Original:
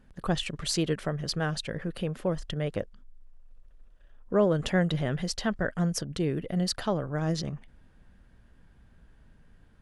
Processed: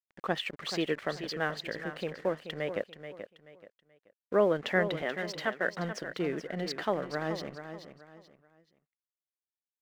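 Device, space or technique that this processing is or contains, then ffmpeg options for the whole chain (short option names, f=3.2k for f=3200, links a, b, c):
pocket radio on a weak battery: -filter_complex "[0:a]highpass=300,lowpass=3.6k,aeval=exprs='sgn(val(0))*max(abs(val(0))-0.002,0)':c=same,equalizer=f=2k:t=o:w=0.49:g=6,asettb=1/sr,asplit=3[a][b][c];[a]atrim=end=5.024[d];[b]atrim=start=5.02:end=5.67,asetpts=PTS-STARTPTS,afade=t=in:d=0.004:c=qsin,afade=t=out:st=0.646:d=0.004:c=qsin,highpass=290[e];[c]atrim=start=5.666[f];[d][e]acrossfade=d=0.004:c1=hsin:c2=qsin[g];[g][f]acrossfade=d=0.004:c1=qsin:c2=hsin,aecho=1:1:431|862|1293:0.316|0.0949|0.0285"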